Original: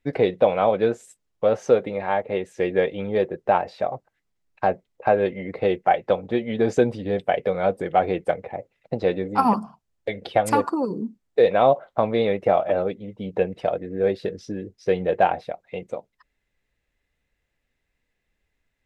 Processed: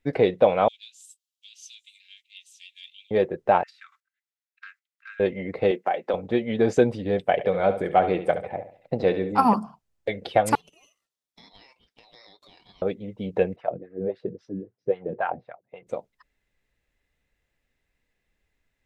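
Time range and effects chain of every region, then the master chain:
0:00.68–0:03.11: Butterworth high-pass 2,900 Hz 48 dB per octave + hard clipping −31 dBFS + single-tap delay 847 ms −23.5 dB
0:03.63–0:05.20: noise gate −43 dBFS, range −11 dB + Butterworth high-pass 1,300 Hz 72 dB per octave + downward compressor 2 to 1, threshold −46 dBFS
0:05.71–0:06.14: high-pass filter 200 Hz 24 dB per octave + downward compressor, threshold −19 dBFS
0:07.32–0:09.32: parametric band 6,600 Hz −3.5 dB 0.6 octaves + repeating echo 70 ms, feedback 36%, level −11 dB
0:10.55–0:12.82: Chebyshev high-pass filter 1,900 Hz, order 3 + ring modulation 1,600 Hz + downward compressor 3 to 1, threshold −52 dBFS
0:13.56–0:15.87: auto-filter band-pass sine 3.7 Hz 210–1,500 Hz + parametric band 120 Hz +15 dB 0.66 octaves
whole clip: no processing

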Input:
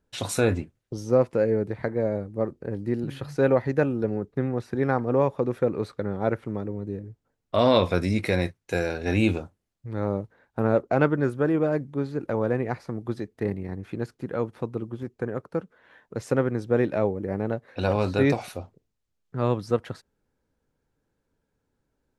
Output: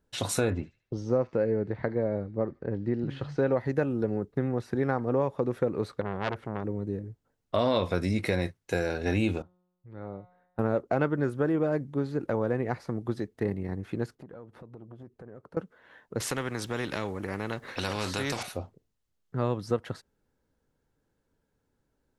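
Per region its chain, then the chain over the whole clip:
0:00.50–0:03.52: high-frequency loss of the air 150 metres + delay with a high-pass on its return 75 ms, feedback 38%, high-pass 3,500 Hz, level −8 dB
0:06.01–0:06.64: high-shelf EQ 6,600 Hz −5 dB + saturating transformer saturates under 1,700 Hz
0:09.42–0:10.59: low-pass filter 3,300 Hz + tuned comb filter 180 Hz, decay 1 s, mix 80%
0:14.15–0:15.57: high-shelf EQ 2,400 Hz −9 dB + downward compressor 8 to 1, threshold −40 dBFS + saturating transformer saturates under 450 Hz
0:16.20–0:18.43: parametric band 680 Hz −8 dB 0.73 octaves + downward compressor 1.5 to 1, threshold −32 dBFS + every bin compressed towards the loudest bin 2 to 1
whole clip: notch filter 2,400 Hz, Q 21; downward compressor 2.5 to 1, threshold −24 dBFS

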